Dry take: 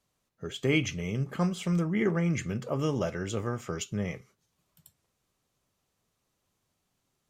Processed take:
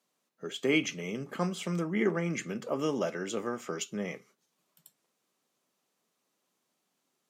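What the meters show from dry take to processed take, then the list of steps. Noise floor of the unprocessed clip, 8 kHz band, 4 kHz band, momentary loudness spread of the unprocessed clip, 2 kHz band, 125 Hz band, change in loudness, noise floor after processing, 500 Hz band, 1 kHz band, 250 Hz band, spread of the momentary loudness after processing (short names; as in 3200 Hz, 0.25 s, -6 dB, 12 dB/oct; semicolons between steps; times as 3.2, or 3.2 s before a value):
-79 dBFS, 0.0 dB, 0.0 dB, 8 LU, 0.0 dB, -8.5 dB, -2.0 dB, -80 dBFS, 0.0 dB, 0.0 dB, -2.5 dB, 9 LU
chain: HPF 200 Hz 24 dB/oct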